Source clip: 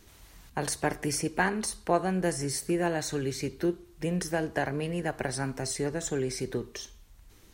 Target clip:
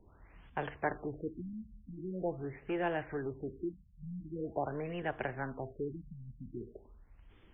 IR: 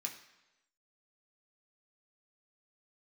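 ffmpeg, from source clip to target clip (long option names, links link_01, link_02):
-filter_complex "[0:a]acrossover=split=370|7000[link_01][link_02][link_03];[link_01]asoftclip=type=tanh:threshold=-37.5dB[link_04];[link_04][link_02][link_03]amix=inputs=3:normalize=0,afftfilt=real='re*lt(b*sr/1024,230*pow(3600/230,0.5+0.5*sin(2*PI*0.44*pts/sr)))':imag='im*lt(b*sr/1024,230*pow(3600/230,0.5+0.5*sin(2*PI*0.44*pts/sr)))':win_size=1024:overlap=0.75,volume=-3.5dB"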